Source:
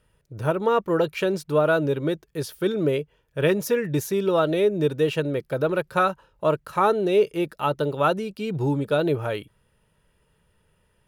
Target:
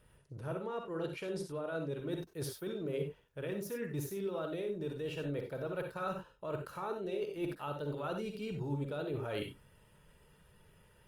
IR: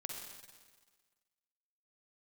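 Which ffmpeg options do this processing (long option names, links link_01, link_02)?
-filter_complex "[0:a]alimiter=limit=-16dB:level=0:latency=1:release=224,areverse,acompressor=threshold=-37dB:ratio=16,areverse[link_01];[1:a]atrim=start_sample=2205,atrim=end_sample=4410[link_02];[link_01][link_02]afir=irnorm=-1:irlink=0,volume=5dB" -ar 48000 -c:a libopus -b:a 32k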